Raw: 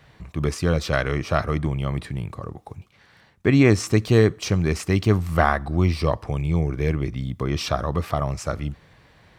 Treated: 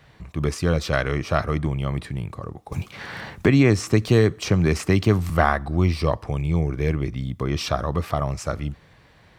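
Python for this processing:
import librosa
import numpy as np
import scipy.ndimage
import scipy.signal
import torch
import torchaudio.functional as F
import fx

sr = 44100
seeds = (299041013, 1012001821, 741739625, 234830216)

y = fx.band_squash(x, sr, depth_pct=70, at=(2.72, 5.3))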